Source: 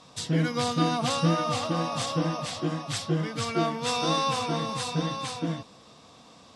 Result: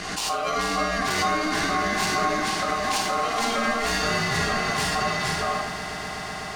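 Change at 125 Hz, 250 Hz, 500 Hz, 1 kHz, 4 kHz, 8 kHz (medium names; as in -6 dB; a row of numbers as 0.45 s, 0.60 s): -5.5 dB, -2.0 dB, +2.5 dB, +6.0 dB, +4.0 dB, +6.0 dB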